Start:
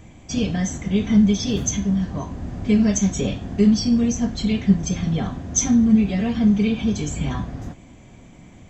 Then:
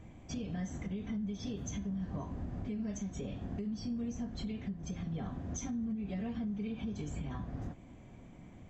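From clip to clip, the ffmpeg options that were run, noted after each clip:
ffmpeg -i in.wav -af "highshelf=frequency=3100:gain=-11,acompressor=threshold=-22dB:ratio=6,alimiter=limit=-23dB:level=0:latency=1:release=249,volume=-7.5dB" out.wav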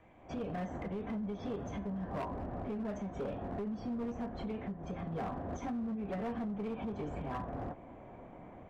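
ffmpeg -i in.wav -filter_complex "[0:a]acrossover=split=430 2900:gain=0.158 1 0.112[link_01][link_02][link_03];[link_01][link_02][link_03]amix=inputs=3:normalize=0,acrossover=split=1200[link_04][link_05];[link_04]dynaudnorm=framelen=170:gausssize=3:maxgain=12dB[link_06];[link_06][link_05]amix=inputs=2:normalize=0,asoftclip=type=hard:threshold=-34.5dB,volume=1dB" out.wav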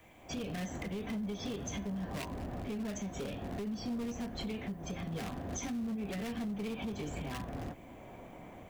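ffmpeg -i in.wav -filter_complex "[0:a]acrossover=split=390|1700[link_01][link_02][link_03];[link_02]alimiter=level_in=17.5dB:limit=-24dB:level=0:latency=1:release=353,volume=-17.5dB[link_04];[link_03]crystalizer=i=7:c=0[link_05];[link_01][link_04][link_05]amix=inputs=3:normalize=0,volume=1dB" out.wav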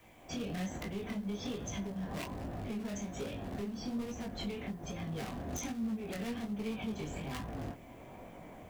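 ffmpeg -i in.wav -af "aeval=exprs='(mod(26.6*val(0)+1,2)-1)/26.6':channel_layout=same,flanger=delay=18:depth=7.6:speed=1.2,acrusher=bits=11:mix=0:aa=0.000001,volume=2.5dB" out.wav

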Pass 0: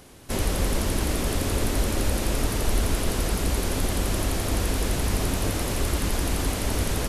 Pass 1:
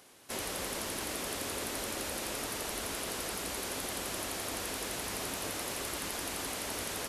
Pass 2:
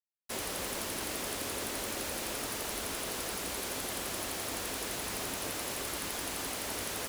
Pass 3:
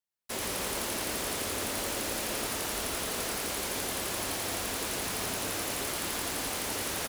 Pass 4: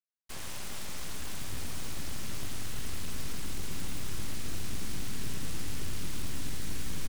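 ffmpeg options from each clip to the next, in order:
ffmpeg -i in.wav -af "highpass=frequency=650:poles=1,volume=-5.5dB" out.wav
ffmpeg -i in.wav -af "acrusher=bits=6:mix=0:aa=0.000001" out.wav
ffmpeg -i in.wav -af "aecho=1:1:110:0.631,volume=2dB" out.wav
ffmpeg -i in.wav -af "aresample=22050,aresample=44100,aeval=exprs='0.0891*(cos(1*acos(clip(val(0)/0.0891,-1,1)))-cos(1*PI/2))+0.0282*(cos(3*acos(clip(val(0)/0.0891,-1,1)))-cos(3*PI/2))+0.00708*(cos(5*acos(clip(val(0)/0.0891,-1,1)))-cos(5*PI/2))+0.0224*(cos(8*acos(clip(val(0)/0.0891,-1,1)))-cos(8*PI/2))':channel_layout=same,asubboost=boost=8.5:cutoff=220,volume=-8dB" out.wav

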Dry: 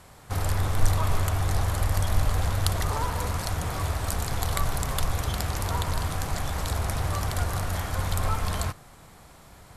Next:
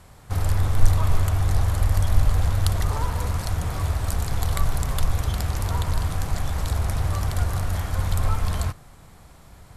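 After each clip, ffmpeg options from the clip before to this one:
ffmpeg -i in.wav -af "lowshelf=frequency=150:gain=8,volume=-1.5dB" out.wav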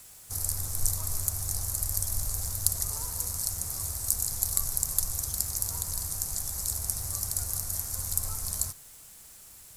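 ffmpeg -i in.wav -af "aexciter=amount=15.2:drive=6.4:freq=4800,acrusher=bits=5:mix=0:aa=0.000001,volume=-16dB" out.wav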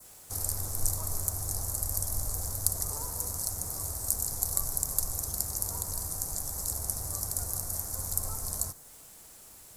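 ffmpeg -i in.wav -filter_complex "[0:a]adynamicequalizer=threshold=0.002:dfrequency=2900:dqfactor=1.2:tfrequency=2900:tqfactor=1.2:attack=5:release=100:ratio=0.375:range=3.5:mode=cutabove:tftype=bell,acrossover=split=220|1000|2100[link_01][link_02][link_03][link_04];[link_02]acontrast=80[link_05];[link_01][link_05][link_03][link_04]amix=inputs=4:normalize=0,volume=-1.5dB" out.wav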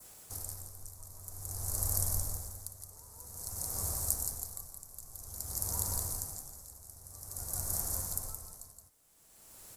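ffmpeg -i in.wav -filter_complex "[0:a]asplit=2[link_01][link_02];[link_02]aecho=0:1:171:0.708[link_03];[link_01][link_03]amix=inputs=2:normalize=0,aeval=exprs='val(0)*pow(10,-19*(0.5-0.5*cos(2*PI*0.51*n/s))/20)':channel_layout=same,volume=-1.5dB" out.wav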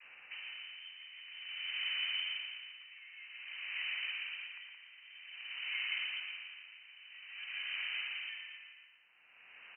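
ffmpeg -i in.wav -filter_complex "[0:a]acrossover=split=190 2000:gain=0.141 1 0.251[link_01][link_02][link_03];[link_01][link_02][link_03]amix=inputs=3:normalize=0,aecho=1:1:116|232|348|464|580|696:0.501|0.251|0.125|0.0626|0.0313|0.0157,lowpass=frequency=2600:width_type=q:width=0.5098,lowpass=frequency=2600:width_type=q:width=0.6013,lowpass=frequency=2600:width_type=q:width=0.9,lowpass=frequency=2600:width_type=q:width=2.563,afreqshift=-3100,volume=9dB" out.wav

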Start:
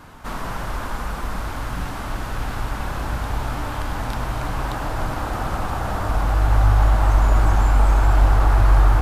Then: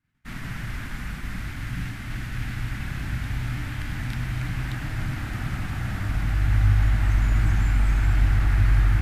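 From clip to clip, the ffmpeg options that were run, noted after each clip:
ffmpeg -i in.wav -af "agate=range=-33dB:threshold=-26dB:ratio=3:detection=peak,equalizer=frequency=125:width_type=o:width=1:gain=10,equalizer=frequency=250:width_type=o:width=1:gain=4,equalizer=frequency=500:width_type=o:width=1:gain=-11,equalizer=frequency=1000:width_type=o:width=1:gain=-11,equalizer=frequency=2000:width_type=o:width=1:gain=11,volume=-6.5dB" out.wav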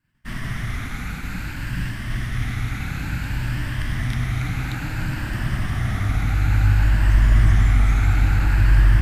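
ffmpeg -i in.wav -af "afftfilt=real='re*pow(10,6/40*sin(2*PI*(1.3*log(max(b,1)*sr/1024/100)/log(2)-(0.57)*(pts-256)/sr)))':imag='im*pow(10,6/40*sin(2*PI*(1.3*log(max(b,1)*sr/1024/100)/log(2)-(0.57)*(pts-256)/sr)))':win_size=1024:overlap=0.75,volume=4dB" out.wav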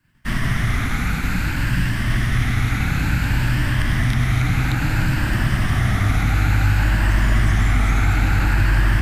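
ffmpeg -i in.wav -filter_complex "[0:a]acrossover=split=150|1800[link_01][link_02][link_03];[link_01]acompressor=threshold=-26dB:ratio=4[link_04];[link_02]acompressor=threshold=-32dB:ratio=4[link_05];[link_03]acompressor=threshold=-39dB:ratio=4[link_06];[link_04][link_05][link_06]amix=inputs=3:normalize=0,volume=9dB" out.wav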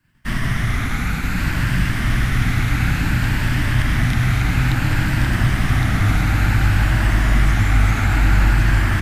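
ffmpeg -i in.wav -af "aecho=1:1:1113:0.631" out.wav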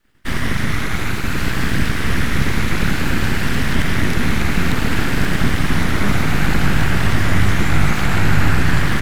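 ffmpeg -i in.wav -af "aeval=exprs='abs(val(0))':channel_layout=same,volume=3dB" out.wav

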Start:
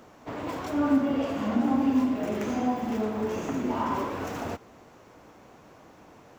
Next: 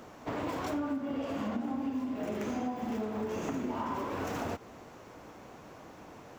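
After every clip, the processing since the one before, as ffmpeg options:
ffmpeg -i in.wav -af "acompressor=threshold=-33dB:ratio=12,volume=2dB" out.wav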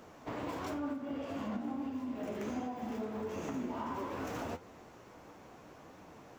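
ffmpeg -i in.wav -af "flanger=delay=9.9:depth=7.3:regen=59:speed=1.5:shape=triangular" out.wav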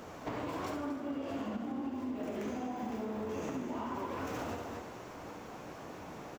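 ffmpeg -i in.wav -filter_complex "[0:a]asplit=2[link_01][link_02];[link_02]aecho=0:1:67.06|236.2:0.447|0.282[link_03];[link_01][link_03]amix=inputs=2:normalize=0,acompressor=threshold=-42dB:ratio=6,asplit=2[link_04][link_05];[link_05]asplit=7[link_06][link_07][link_08][link_09][link_10][link_11][link_12];[link_06]adelay=153,afreqshift=62,volume=-14dB[link_13];[link_07]adelay=306,afreqshift=124,volume=-17.9dB[link_14];[link_08]adelay=459,afreqshift=186,volume=-21.8dB[link_15];[link_09]adelay=612,afreqshift=248,volume=-25.6dB[link_16];[link_10]adelay=765,afreqshift=310,volume=-29.5dB[link_17];[link_11]adelay=918,afreqshift=372,volume=-33.4dB[link_18];[link_12]adelay=1071,afreqshift=434,volume=-37.3dB[link_19];[link_13][link_14][link_15][link_16][link_17][link_18][link_19]amix=inputs=7:normalize=0[link_20];[link_04][link_20]amix=inputs=2:normalize=0,volume=6.5dB" out.wav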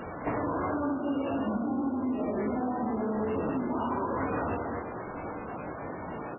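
ffmpeg -i in.wav -filter_complex "[0:a]asplit=2[link_01][link_02];[link_02]asoftclip=type=tanh:threshold=-36dB,volume=-4dB[link_03];[link_01][link_03]amix=inputs=2:normalize=0,volume=5dB" -ar 11025 -c:a libmp3lame -b:a 8k out.mp3

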